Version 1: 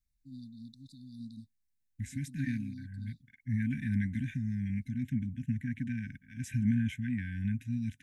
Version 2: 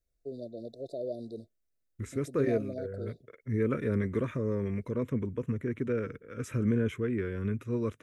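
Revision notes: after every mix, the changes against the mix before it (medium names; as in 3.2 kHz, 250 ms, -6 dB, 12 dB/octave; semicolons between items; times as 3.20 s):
master: remove brick-wall FIR band-stop 280–1500 Hz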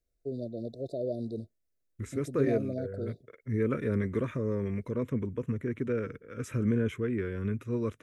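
first voice: add bass shelf 250 Hz +12 dB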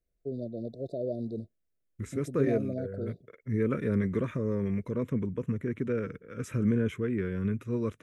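first voice: add treble shelf 3.6 kHz -8.5 dB; master: add peaking EQ 180 Hz +7.5 dB 0.3 oct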